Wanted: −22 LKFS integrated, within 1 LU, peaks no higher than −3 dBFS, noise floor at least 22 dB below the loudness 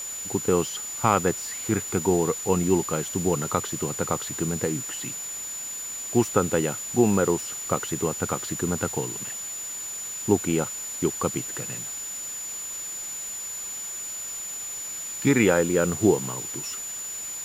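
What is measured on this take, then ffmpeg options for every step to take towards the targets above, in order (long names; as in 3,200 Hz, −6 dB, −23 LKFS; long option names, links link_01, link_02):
interfering tone 7,000 Hz; level of the tone −32 dBFS; background noise floor −34 dBFS; target noise floor −48 dBFS; integrated loudness −26.0 LKFS; sample peak −5.0 dBFS; target loudness −22.0 LKFS
→ -af "bandreject=frequency=7000:width=30"
-af "afftdn=noise_reduction=14:noise_floor=-34"
-af "volume=4dB,alimiter=limit=-3dB:level=0:latency=1"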